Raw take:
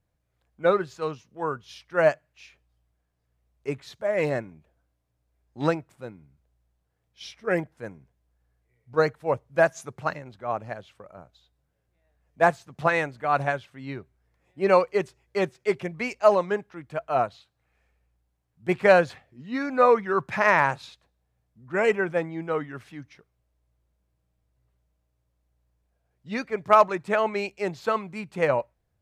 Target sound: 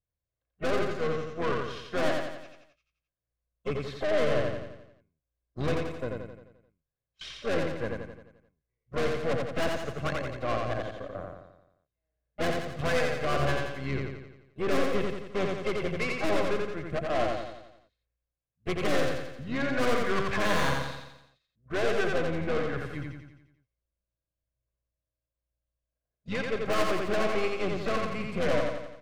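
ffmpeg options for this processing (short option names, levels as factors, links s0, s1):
-filter_complex "[0:a]agate=range=0.0794:threshold=0.00501:ratio=16:detection=peak,acrossover=split=4200[s0][s1];[s1]acompressor=threshold=0.00126:ratio=4:attack=1:release=60[s2];[s0][s2]amix=inputs=2:normalize=0,highshelf=f=3400:g=-5,aecho=1:1:1.9:0.45,asplit=2[s3][s4];[s4]acompressor=threshold=0.02:ratio=16,volume=0.944[s5];[s3][s5]amix=inputs=2:normalize=0,aeval=exprs='0.708*(cos(1*acos(clip(val(0)/0.708,-1,1)))-cos(1*PI/2))+0.178*(cos(4*acos(clip(val(0)/0.708,-1,1)))-cos(4*PI/2))+0.01*(cos(8*acos(clip(val(0)/0.708,-1,1)))-cos(8*PI/2))':c=same,asplit=3[s6][s7][s8];[s7]asetrate=22050,aresample=44100,atempo=2,volume=0.316[s9];[s8]asetrate=55563,aresample=44100,atempo=0.793701,volume=0.158[s10];[s6][s9][s10]amix=inputs=3:normalize=0,aeval=exprs='(tanh(20*val(0)+0.5)-tanh(0.5))/20':c=same,asuperstop=centerf=900:order=4:qfactor=6.6,aecho=1:1:87|174|261|348|435|522|609:0.708|0.375|0.199|0.105|0.0559|0.0296|0.0157"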